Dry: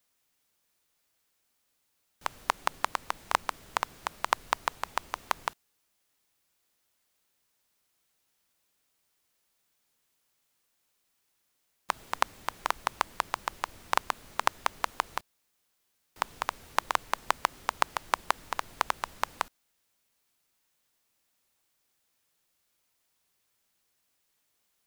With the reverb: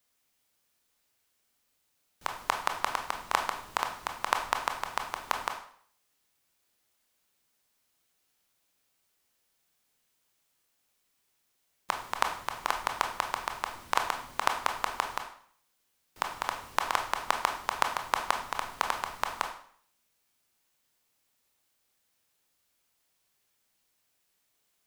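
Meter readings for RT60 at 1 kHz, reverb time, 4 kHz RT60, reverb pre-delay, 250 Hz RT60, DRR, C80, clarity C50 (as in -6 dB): 0.55 s, 0.55 s, 0.50 s, 15 ms, 0.55 s, 3.5 dB, 11.0 dB, 7.5 dB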